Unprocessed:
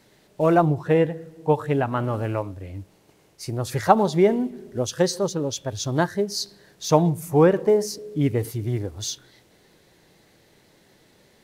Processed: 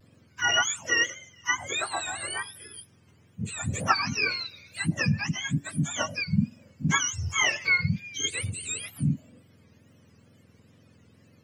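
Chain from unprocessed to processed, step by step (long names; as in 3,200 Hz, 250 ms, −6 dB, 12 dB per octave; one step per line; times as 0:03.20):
frequency axis turned over on the octave scale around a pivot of 980 Hz
tape wow and flutter 110 cents
level −3 dB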